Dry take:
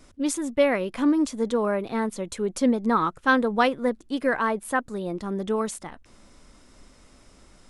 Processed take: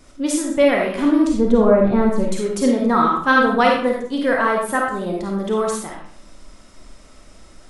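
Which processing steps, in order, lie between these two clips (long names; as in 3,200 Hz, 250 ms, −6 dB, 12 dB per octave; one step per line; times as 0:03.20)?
0:01.27–0:02.24: spectral tilt −3.5 dB per octave
convolution reverb RT60 0.55 s, pre-delay 10 ms, DRR −1.5 dB
level +3 dB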